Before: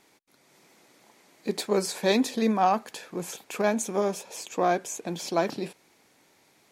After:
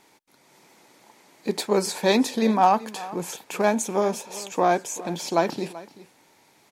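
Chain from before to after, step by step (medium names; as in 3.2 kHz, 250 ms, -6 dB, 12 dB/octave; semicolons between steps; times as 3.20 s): peaking EQ 900 Hz +6.5 dB 0.22 oct; delay 384 ms -18 dB; trim +3 dB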